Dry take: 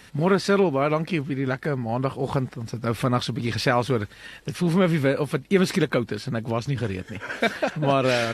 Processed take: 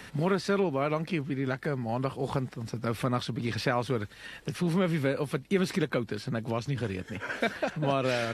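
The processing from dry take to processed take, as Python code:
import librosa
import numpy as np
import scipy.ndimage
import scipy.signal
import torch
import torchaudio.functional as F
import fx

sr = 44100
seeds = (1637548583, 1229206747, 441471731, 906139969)

y = fx.band_squash(x, sr, depth_pct=40)
y = F.gain(torch.from_numpy(y), -6.5).numpy()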